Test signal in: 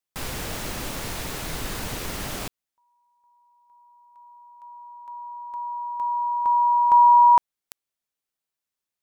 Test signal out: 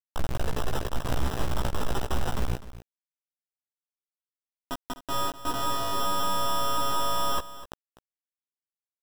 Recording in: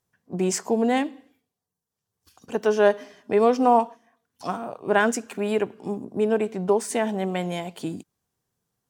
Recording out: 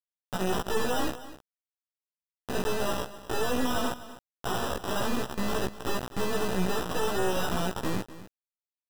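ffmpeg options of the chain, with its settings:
-filter_complex "[0:a]lowpass=5100,bandreject=f=60:t=h:w=6,bandreject=f=120:t=h:w=6,bandreject=f=180:t=h:w=6,bandreject=f=240:t=h:w=6,bandreject=f=300:t=h:w=6,bandreject=f=360:t=h:w=6,aphaser=in_gain=1:out_gain=1:delay=2.5:decay=0.63:speed=0.77:type=sinusoidal,areverse,acompressor=threshold=0.0562:ratio=8:attack=0.12:release=57:knee=1:detection=peak,areverse,lowshelf=f=120:t=q:w=1.5:g=8.5,asplit=2[s0][s1];[s1]aeval=exprs='0.0447*(abs(mod(val(0)/0.0447+3,4)-2)-1)':c=same,volume=0.398[s2];[s0][s2]amix=inputs=2:normalize=0,acrusher=samples=20:mix=1:aa=0.000001,aeval=exprs='0.158*(cos(1*acos(clip(val(0)/0.158,-1,1)))-cos(1*PI/2))+0.0631*(cos(3*acos(clip(val(0)/0.158,-1,1)))-cos(3*PI/2))+0.0398*(cos(5*acos(clip(val(0)/0.158,-1,1)))-cos(5*PI/2))+0.0141*(cos(6*acos(clip(val(0)/0.158,-1,1)))-cos(6*PI/2))':c=same,acrusher=bits=4:mix=0:aa=0.000001,asplit=2[s3][s4];[s4]adelay=16,volume=0.708[s5];[s3][s5]amix=inputs=2:normalize=0,aecho=1:1:251:0.168"

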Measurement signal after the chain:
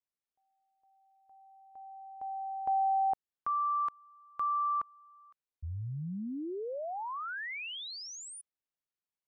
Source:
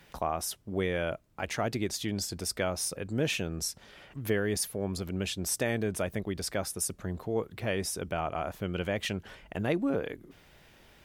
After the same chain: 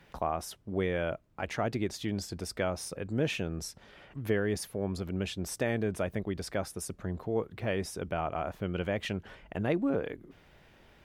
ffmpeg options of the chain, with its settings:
-af "highshelf=f=4100:g=-10.5"

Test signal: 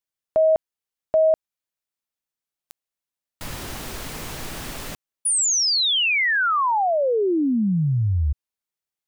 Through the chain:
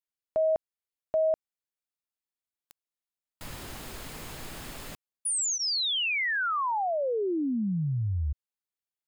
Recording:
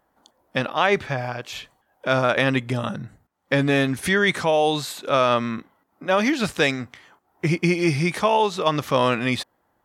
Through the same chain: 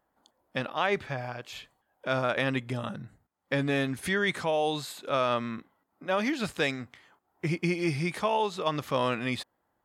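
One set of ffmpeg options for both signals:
-af "bandreject=f=5800:w=14,volume=0.398"

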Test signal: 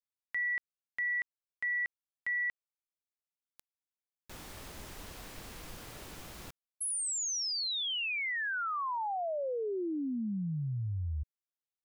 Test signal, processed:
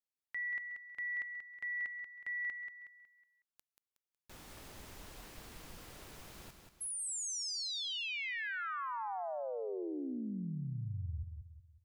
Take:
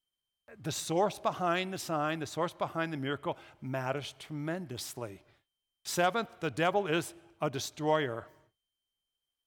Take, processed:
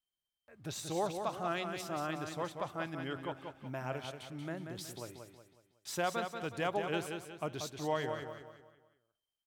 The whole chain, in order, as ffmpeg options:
-af "aecho=1:1:184|368|552|736|920:0.473|0.189|0.0757|0.0303|0.0121,volume=0.501"

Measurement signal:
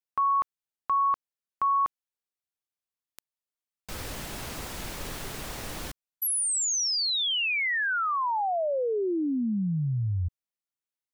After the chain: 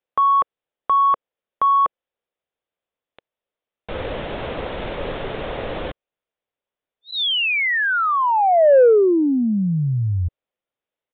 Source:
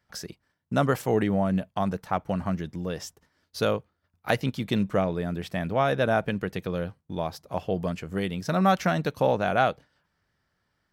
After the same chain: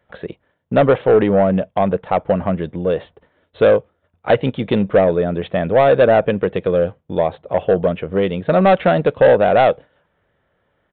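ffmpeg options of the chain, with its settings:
-af "equalizer=f=520:t=o:w=0.96:g=11.5,aresample=8000,asoftclip=type=tanh:threshold=0.237,aresample=44100,volume=2.24"

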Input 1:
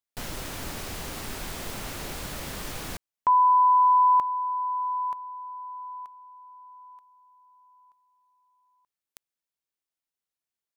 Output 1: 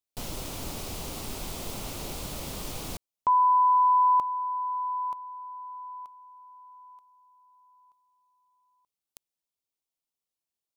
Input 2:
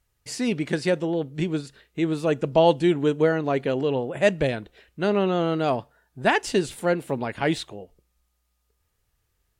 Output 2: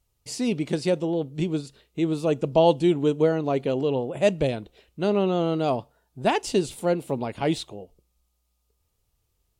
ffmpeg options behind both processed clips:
-af "equalizer=f=1700:w=2:g=-11"

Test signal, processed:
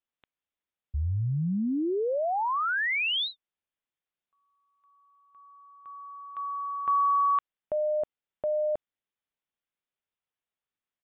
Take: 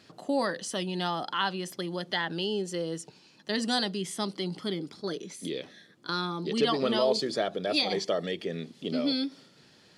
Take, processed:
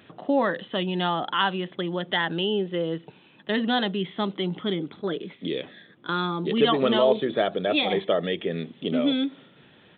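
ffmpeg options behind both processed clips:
-af "aresample=8000,aresample=44100,volume=1.88"

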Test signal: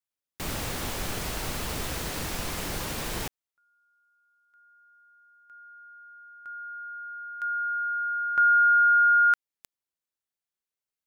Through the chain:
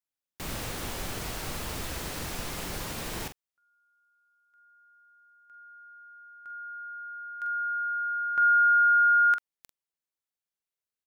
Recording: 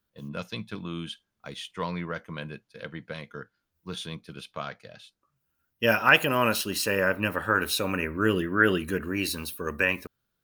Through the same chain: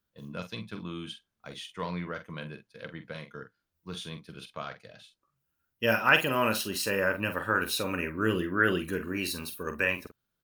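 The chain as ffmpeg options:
-filter_complex "[0:a]asplit=2[s0][s1];[s1]adelay=45,volume=0.355[s2];[s0][s2]amix=inputs=2:normalize=0,volume=0.668"

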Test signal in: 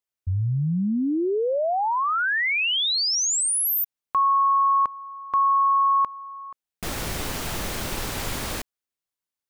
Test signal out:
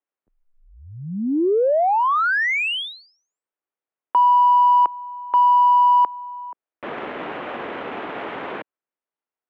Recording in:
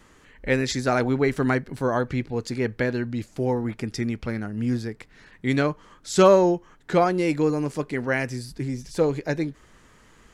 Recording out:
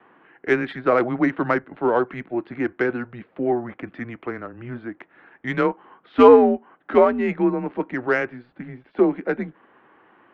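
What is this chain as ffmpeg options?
-af "highpass=f=410:t=q:w=0.5412,highpass=f=410:t=q:w=1.307,lowpass=f=3500:t=q:w=0.5176,lowpass=f=3500:t=q:w=0.7071,lowpass=f=3500:t=q:w=1.932,afreqshift=-120,adynamicsmooth=sensitivity=1.5:basefreq=2600,aemphasis=mode=reproduction:type=75fm,volume=1.88"

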